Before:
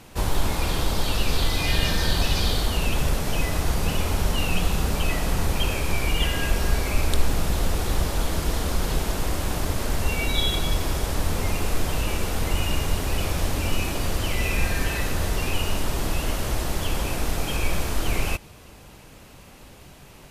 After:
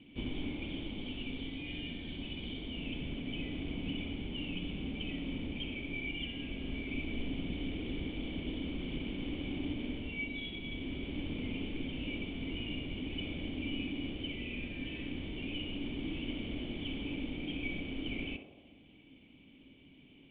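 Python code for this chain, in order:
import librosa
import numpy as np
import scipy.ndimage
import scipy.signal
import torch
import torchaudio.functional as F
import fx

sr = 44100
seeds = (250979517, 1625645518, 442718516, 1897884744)

y = fx.cvsd(x, sr, bps=32000)
y = fx.tilt_eq(y, sr, slope=2.0)
y = fx.rider(y, sr, range_db=10, speed_s=0.5)
y = fx.formant_cascade(y, sr, vowel='i')
y = fx.echo_banded(y, sr, ms=64, feedback_pct=79, hz=660.0, wet_db=-3.5)
y = y * 10.0 ** (1.5 / 20.0)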